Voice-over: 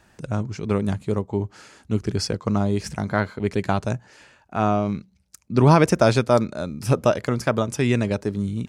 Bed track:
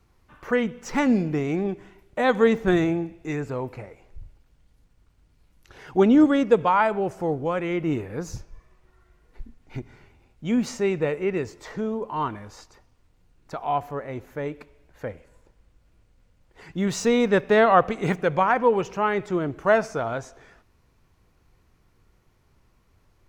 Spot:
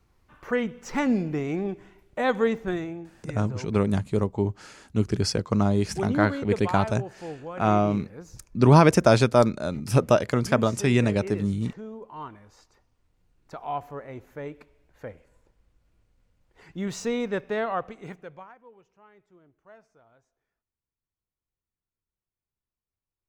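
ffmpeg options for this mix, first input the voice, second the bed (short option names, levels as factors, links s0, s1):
-filter_complex "[0:a]adelay=3050,volume=0.944[s0];[1:a]volume=1.33,afade=t=out:st=2.28:d=0.59:silence=0.375837,afade=t=in:st=12.46:d=0.81:silence=0.530884,afade=t=out:st=16.9:d=1.66:silence=0.0473151[s1];[s0][s1]amix=inputs=2:normalize=0"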